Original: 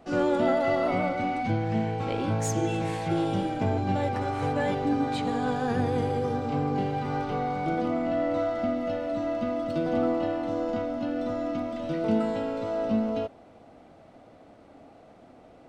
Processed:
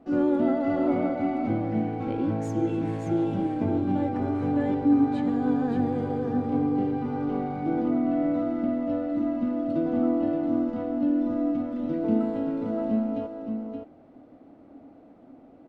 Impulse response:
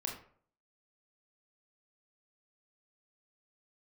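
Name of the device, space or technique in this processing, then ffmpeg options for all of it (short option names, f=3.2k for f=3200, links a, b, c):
through cloth: -af "equalizer=f=280:t=o:w=0.67:g=11.5,highshelf=f=2.8k:g=-13.5,aecho=1:1:572:0.473,volume=-4.5dB"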